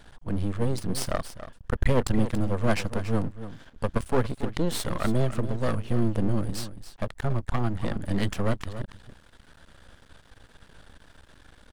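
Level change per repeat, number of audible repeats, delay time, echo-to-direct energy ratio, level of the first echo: no steady repeat, 1, 0.282 s, -12.5 dB, -12.5 dB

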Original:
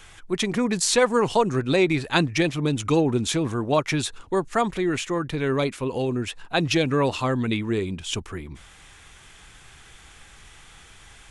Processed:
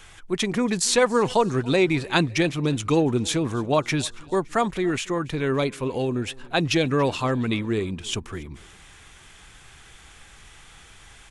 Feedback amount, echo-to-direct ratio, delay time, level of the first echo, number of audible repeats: 53%, -22.5 dB, 0.283 s, -24.0 dB, 2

